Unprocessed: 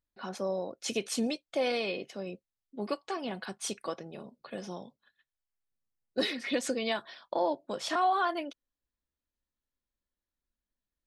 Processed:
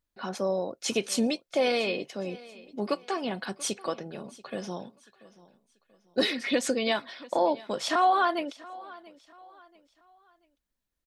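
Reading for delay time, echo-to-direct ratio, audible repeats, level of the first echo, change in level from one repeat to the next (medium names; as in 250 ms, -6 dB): 685 ms, -20.0 dB, 2, -20.5 dB, -9.0 dB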